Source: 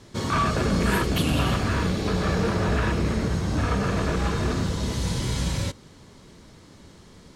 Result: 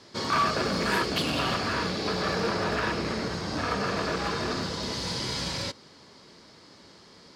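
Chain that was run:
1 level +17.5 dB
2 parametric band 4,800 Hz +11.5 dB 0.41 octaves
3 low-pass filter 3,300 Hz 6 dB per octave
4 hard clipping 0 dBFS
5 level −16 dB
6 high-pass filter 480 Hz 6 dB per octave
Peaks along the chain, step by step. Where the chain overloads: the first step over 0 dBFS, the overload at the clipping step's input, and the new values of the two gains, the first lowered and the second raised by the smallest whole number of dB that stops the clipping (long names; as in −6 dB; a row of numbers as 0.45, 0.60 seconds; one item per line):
+6.5, +8.0, +7.0, 0.0, −16.0, −14.5 dBFS
step 1, 7.0 dB
step 1 +10.5 dB, step 5 −9 dB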